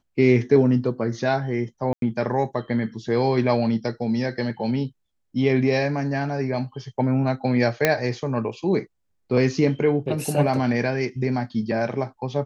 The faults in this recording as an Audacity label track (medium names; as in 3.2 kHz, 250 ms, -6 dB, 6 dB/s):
1.930000	2.020000	dropout 92 ms
7.850000	7.850000	pop -3 dBFS